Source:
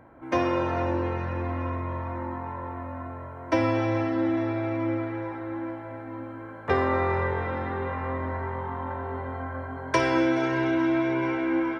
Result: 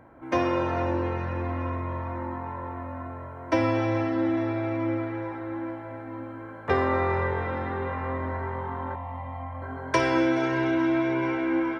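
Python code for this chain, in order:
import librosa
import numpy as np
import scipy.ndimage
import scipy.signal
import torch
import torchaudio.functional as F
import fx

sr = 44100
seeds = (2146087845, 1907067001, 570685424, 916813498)

y = fx.fixed_phaser(x, sr, hz=1500.0, stages=6, at=(8.95, 9.62))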